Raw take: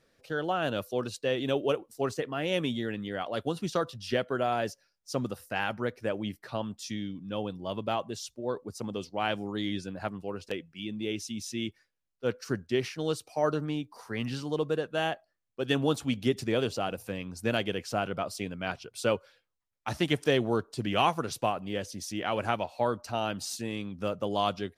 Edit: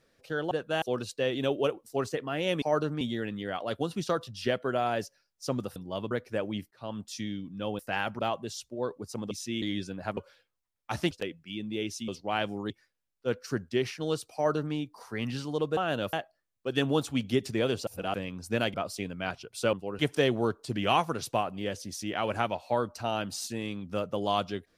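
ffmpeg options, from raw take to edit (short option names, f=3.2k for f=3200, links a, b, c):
-filter_complex "[0:a]asplit=23[a][b][c][d][e][f][g][h][i][j][k][l][m][n][o][p][q][r][s][t][u][v][w];[a]atrim=end=0.512[x];[b]atrim=start=14.748:end=15.062[y];[c]atrim=start=0.868:end=2.672[z];[d]atrim=start=13.328:end=13.722[aa];[e]atrim=start=2.668:end=5.422[ab];[f]atrim=start=7.498:end=7.852[ac];[g]atrim=start=5.818:end=6.42,asetpts=PTS-STARTPTS,afade=t=out:st=0.598:d=0.004:c=hsin[ad];[h]atrim=start=6.42:end=7.502,asetpts=PTS-STARTPTS,afade=t=in:d=0.29[ae];[i]atrim=start=5.418:end=5.822[af];[j]atrim=start=7.848:end=8.972[ag];[k]atrim=start=11.368:end=11.682[ah];[l]atrim=start=9.588:end=10.142[ai];[m]atrim=start=19.138:end=20.082[aj];[n]atrim=start=10.398:end=11.372[ak];[o]atrim=start=8.968:end=9.592[al];[p]atrim=start=11.678:end=14.752[am];[q]atrim=start=0.508:end=0.872[an];[r]atrim=start=15.058:end=16.802[ao];[s]atrim=start=16.798:end=17.072,asetpts=PTS-STARTPTS,areverse[ap];[t]atrim=start=17.068:end=17.672[aq];[u]atrim=start=18.148:end=19.142[ar];[v]atrim=start=10.138:end=10.402[as];[w]atrim=start=20.078[at];[x][y]acrossfade=d=0.004:c1=hsin:c2=hsin[au];[au][z]acrossfade=d=0.004:c1=hsin:c2=hsin[av];[av][aa]acrossfade=d=0.004:c1=hsin:c2=hsin[aw];[aw][ab]acrossfade=d=0.004:c1=hsin:c2=hsin[ax];[ax][ac]acrossfade=d=0.004:c1=hsin:c2=hsin[ay];[ad][ae]concat=n=2:v=0:a=1[az];[ay][az]acrossfade=d=0.004:c1=hsin:c2=hsin[ba];[ba][af]acrossfade=d=0.004:c1=hsin:c2=hsin[bb];[bb][ag]acrossfade=d=0.004:c1=hsin:c2=hsin[bc];[bc][ah]acrossfade=d=0.004:c1=hsin:c2=hsin[bd];[bd][ai]acrossfade=d=0.004:c1=hsin:c2=hsin[be];[be][aj]acrossfade=d=0.004:c1=hsin:c2=hsin[bf];[bf][ak]acrossfade=d=0.004:c1=hsin:c2=hsin[bg];[bg][al]acrossfade=d=0.004:c1=hsin:c2=hsin[bh];[bh][am]acrossfade=d=0.004:c1=hsin:c2=hsin[bi];[bi][an]acrossfade=d=0.004:c1=hsin:c2=hsin[bj];[bj][ao]acrossfade=d=0.004:c1=hsin:c2=hsin[bk];[bk][ap]acrossfade=d=0.004:c1=hsin:c2=hsin[bl];[bl][aq]acrossfade=d=0.004:c1=hsin:c2=hsin[bm];[bm][ar]acrossfade=d=0.004:c1=hsin:c2=hsin[bn];[bn][as]acrossfade=d=0.004:c1=hsin:c2=hsin[bo];[bo][at]acrossfade=d=0.004:c1=hsin:c2=hsin"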